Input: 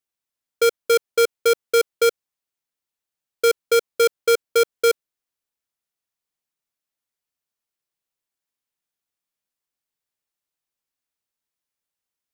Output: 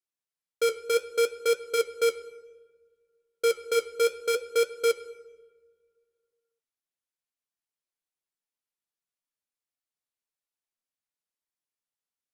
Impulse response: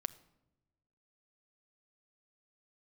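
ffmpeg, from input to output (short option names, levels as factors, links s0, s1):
-filter_complex "[0:a]equalizer=f=65:t=o:w=1.4:g=-7[s0];[1:a]atrim=start_sample=2205,asetrate=24255,aresample=44100[s1];[s0][s1]afir=irnorm=-1:irlink=0,flanger=delay=5.7:depth=9.6:regen=-60:speed=0.62:shape=triangular,volume=0.531"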